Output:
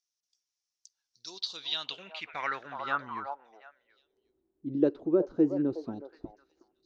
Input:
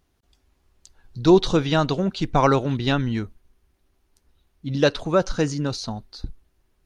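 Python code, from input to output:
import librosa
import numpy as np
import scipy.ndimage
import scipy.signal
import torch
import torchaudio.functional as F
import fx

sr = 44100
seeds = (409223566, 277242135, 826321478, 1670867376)

y = fx.echo_stepped(x, sr, ms=367, hz=700.0, octaves=1.4, feedback_pct=70, wet_db=-6)
y = fx.rider(y, sr, range_db=4, speed_s=0.5)
y = fx.filter_sweep_bandpass(y, sr, from_hz=5700.0, to_hz=340.0, start_s=1.21, end_s=4.41, q=5.3)
y = F.gain(torch.from_numpy(y), 3.0).numpy()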